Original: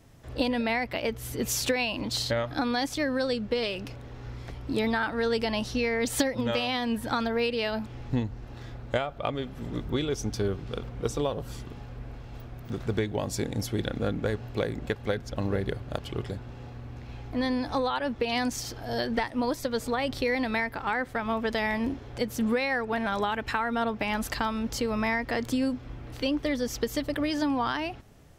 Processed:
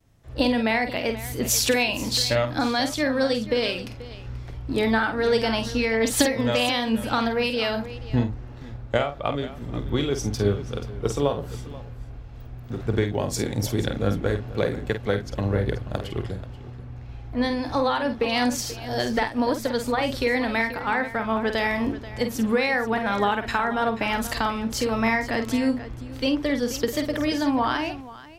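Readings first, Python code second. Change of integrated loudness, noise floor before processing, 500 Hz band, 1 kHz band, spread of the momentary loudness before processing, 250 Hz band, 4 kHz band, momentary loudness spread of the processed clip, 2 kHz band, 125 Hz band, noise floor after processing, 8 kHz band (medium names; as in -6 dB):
+5.0 dB, -44 dBFS, +5.0 dB, +5.0 dB, 12 LU, +4.5 dB, +5.5 dB, 14 LU, +5.0 dB, +5.5 dB, -39 dBFS, +6.5 dB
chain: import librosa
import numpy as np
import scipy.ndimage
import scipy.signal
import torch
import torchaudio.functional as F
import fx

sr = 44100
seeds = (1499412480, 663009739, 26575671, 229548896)

p1 = fx.vibrato(x, sr, rate_hz=0.97, depth_cents=35.0)
p2 = p1 + fx.echo_multitap(p1, sr, ms=(49, 484), db=(-8.0, -13.0), dry=0)
p3 = fx.band_widen(p2, sr, depth_pct=40)
y = p3 * 10.0 ** (4.0 / 20.0)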